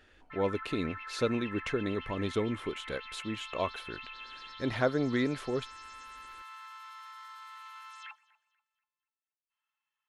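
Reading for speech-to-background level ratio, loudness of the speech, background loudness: 11.5 dB, -33.5 LUFS, -45.0 LUFS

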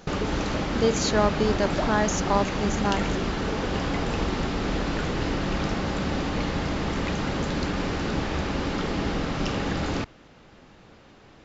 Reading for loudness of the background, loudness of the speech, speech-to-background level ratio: -27.5 LUFS, -26.0 LUFS, 1.5 dB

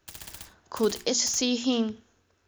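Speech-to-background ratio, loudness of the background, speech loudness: 18.0 dB, -44.0 LUFS, -26.0 LUFS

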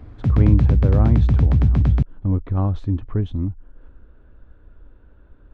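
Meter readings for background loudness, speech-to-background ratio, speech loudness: -18.0 LUFS, -5.0 dB, -23.0 LUFS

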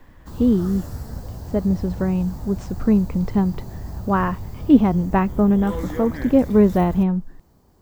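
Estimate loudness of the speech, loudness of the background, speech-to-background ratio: -20.0 LUFS, -33.5 LUFS, 13.5 dB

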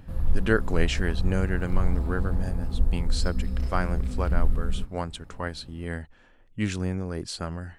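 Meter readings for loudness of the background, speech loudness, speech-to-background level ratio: -31.0 LUFS, -31.5 LUFS, -0.5 dB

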